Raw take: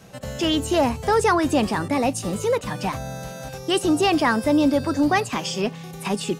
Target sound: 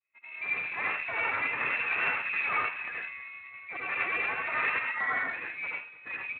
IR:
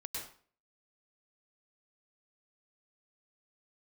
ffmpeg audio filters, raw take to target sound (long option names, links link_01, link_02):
-filter_complex "[0:a]agate=range=-33dB:threshold=-30dB:ratio=3:detection=peak,asplit=3[link_01][link_02][link_03];[link_01]afade=type=out:start_time=1.48:duration=0.02[link_04];[link_02]tiltshelf=frequency=1200:gain=5.5,afade=type=in:start_time=1.48:duration=0.02,afade=type=out:start_time=2.71:duration=0.02[link_05];[link_03]afade=type=in:start_time=2.71:duration=0.02[link_06];[link_04][link_05][link_06]amix=inputs=3:normalize=0,asplit=3[link_07][link_08][link_09];[link_07]afade=type=out:start_time=3.34:duration=0.02[link_10];[link_08]bandreject=frequency=45.22:width_type=h:width=4,bandreject=frequency=90.44:width_type=h:width=4,bandreject=frequency=135.66:width_type=h:width=4,bandreject=frequency=180.88:width_type=h:width=4,bandreject=frequency=226.1:width_type=h:width=4,bandreject=frequency=271.32:width_type=h:width=4,bandreject=frequency=316.54:width_type=h:width=4,bandreject=frequency=361.76:width_type=h:width=4,bandreject=frequency=406.98:width_type=h:width=4,bandreject=frequency=452.2:width_type=h:width=4,bandreject=frequency=497.42:width_type=h:width=4,bandreject=frequency=542.64:width_type=h:width=4,bandreject=frequency=587.86:width_type=h:width=4,bandreject=frequency=633.08:width_type=h:width=4,bandreject=frequency=678.3:width_type=h:width=4,bandreject=frequency=723.52:width_type=h:width=4,bandreject=frequency=768.74:width_type=h:width=4,bandreject=frequency=813.96:width_type=h:width=4,bandreject=frequency=859.18:width_type=h:width=4,bandreject=frequency=904.4:width_type=h:width=4,bandreject=frequency=949.62:width_type=h:width=4,bandreject=frequency=994.84:width_type=h:width=4,bandreject=frequency=1040.06:width_type=h:width=4,bandreject=frequency=1085.28:width_type=h:width=4,bandreject=frequency=1130.5:width_type=h:width=4,bandreject=frequency=1175.72:width_type=h:width=4,bandreject=frequency=1220.94:width_type=h:width=4,bandreject=frequency=1266.16:width_type=h:width=4,bandreject=frequency=1311.38:width_type=h:width=4,bandreject=frequency=1356.6:width_type=h:width=4,bandreject=frequency=1401.82:width_type=h:width=4,bandreject=frequency=1447.04:width_type=h:width=4,bandreject=frequency=1492.26:width_type=h:width=4,afade=type=in:start_time=3.34:duration=0.02,afade=type=out:start_time=3.86:duration=0.02[link_11];[link_09]afade=type=in:start_time=3.86:duration=0.02[link_12];[link_10][link_11][link_12]amix=inputs=3:normalize=0,aeval=exprs='(mod(4.73*val(0)+1,2)-1)/4.73':channel_layout=same,flanger=delay=1.2:depth=1.4:regen=-42:speed=1.3:shape=sinusoidal,asettb=1/sr,asplit=3[link_13][link_14][link_15];[link_13]atrim=end=4.834[link_16];[link_14]atrim=start=4.83:end=5.27,asetpts=PTS-STARTPTS,afade=type=in:duration=0.004:curve=qsin,afade=type=out:start_time=0.436:duration=0.004:curve=qsin,afreqshift=470[link_17];[link_15]atrim=start=5.266[link_18];[link_16][link_17]acrossfade=duration=0.004:curve1=hsin:curve2=qsin[link_19];[link_19][link_18]acrossfade=duration=0.004:curve1=qsin:curve2=hsin,asplit=2[link_20][link_21];[link_21]adelay=220,highpass=300,lowpass=3400,asoftclip=type=hard:threshold=-17dB,volume=-20dB[link_22];[link_20][link_22]amix=inputs=2:normalize=0[link_23];[1:a]atrim=start_sample=2205,asetrate=61740,aresample=44100[link_24];[link_23][link_24]afir=irnorm=-1:irlink=0,lowpass=frequency=2300:width_type=q:width=0.5098,lowpass=frequency=2300:width_type=q:width=0.6013,lowpass=frequency=2300:width_type=q:width=0.9,lowpass=frequency=2300:width_type=q:width=2.563,afreqshift=-2700,volume=-1.5dB" -ar 32000 -c:a libspeex -b:a 24k